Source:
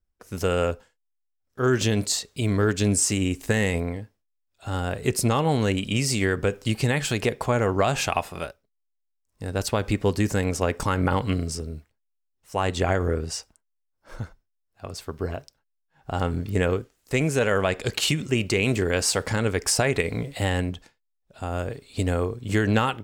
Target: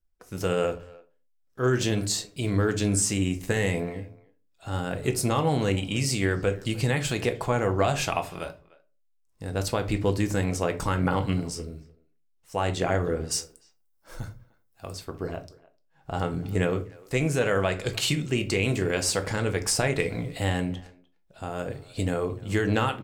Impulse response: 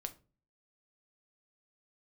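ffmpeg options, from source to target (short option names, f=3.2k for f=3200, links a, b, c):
-filter_complex "[0:a]asettb=1/sr,asplit=3[a][b][c];[a]atrim=end=13.314[d];[b]atrim=start=13.31:end=14.95,asetpts=PTS-STARTPTS,afade=t=in:d=0.004:c=qsin,afade=t=out:st=1.636:d=0.004:c=qsin,aemphasis=mode=production:type=50kf[e];[c]atrim=start=14.946[f];[d][e]acrossfade=d=0.004:c1=hsin:c2=qsin[g];[g][f]acrossfade=d=0.004:c1=qsin:c2=hsin,asplit=2[h][i];[i]adelay=300,highpass=300,lowpass=3.4k,asoftclip=type=hard:threshold=-16.5dB,volume=-22dB[j];[h][j]amix=inputs=2:normalize=0[k];[1:a]atrim=start_sample=2205,afade=t=out:st=0.32:d=0.01,atrim=end_sample=14553[l];[k][l]afir=irnorm=-1:irlink=0"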